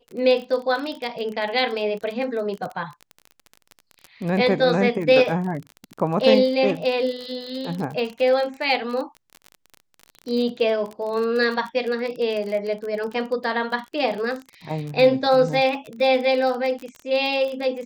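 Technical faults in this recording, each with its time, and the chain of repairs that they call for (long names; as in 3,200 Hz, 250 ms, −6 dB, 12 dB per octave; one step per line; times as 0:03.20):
surface crackle 30 per second −28 dBFS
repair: click removal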